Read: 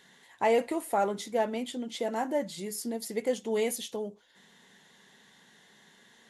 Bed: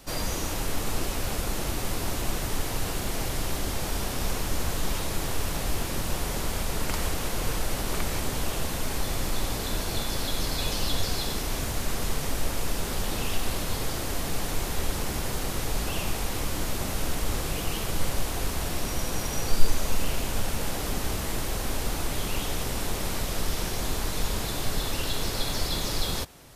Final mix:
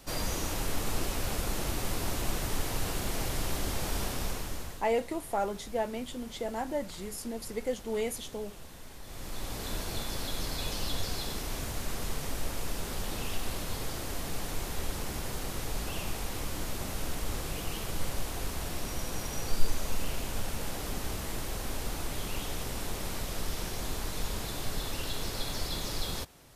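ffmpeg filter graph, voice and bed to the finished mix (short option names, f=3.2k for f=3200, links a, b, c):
-filter_complex "[0:a]adelay=4400,volume=-3.5dB[a];[1:a]volume=9.5dB,afade=t=out:st=4.04:d=0.8:silence=0.16788,afade=t=in:st=9.02:d=0.68:silence=0.237137[b];[a][b]amix=inputs=2:normalize=0"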